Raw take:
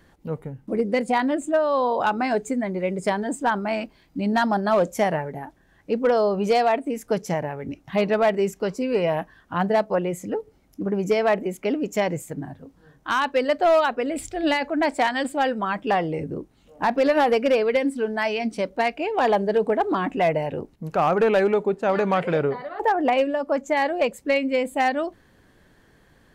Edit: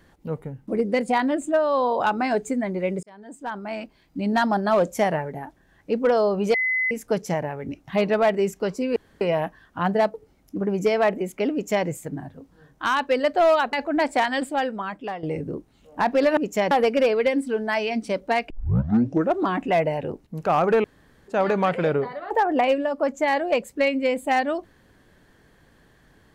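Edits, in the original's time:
3.03–4.38 s: fade in
6.54–6.91 s: bleep 2.03 kHz -20 dBFS
8.96 s: insert room tone 0.25 s
9.89–10.39 s: delete
11.77–12.11 s: copy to 17.20 s
13.98–14.56 s: delete
15.21–16.06 s: fade out, to -13.5 dB
18.99 s: tape start 0.94 s
21.33–21.77 s: room tone

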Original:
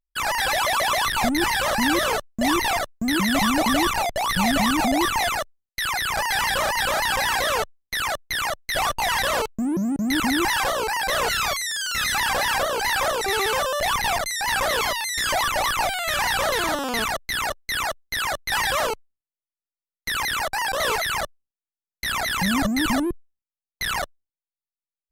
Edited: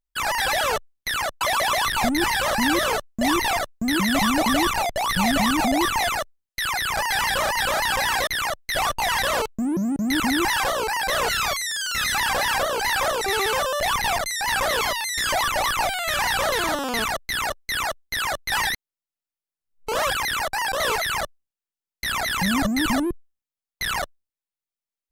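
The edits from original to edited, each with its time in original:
7.47–8.27 s: move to 0.61 s
18.69–20.13 s: reverse

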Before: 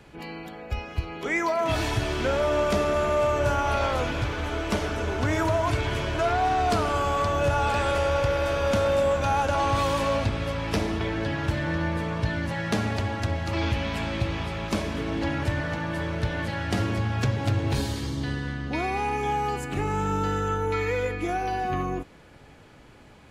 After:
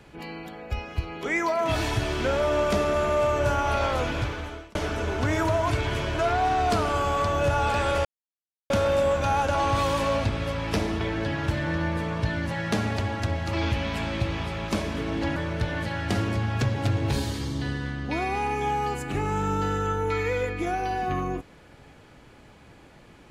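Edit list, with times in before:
4.21–4.75 s: fade out
8.05–8.70 s: mute
15.36–15.98 s: delete

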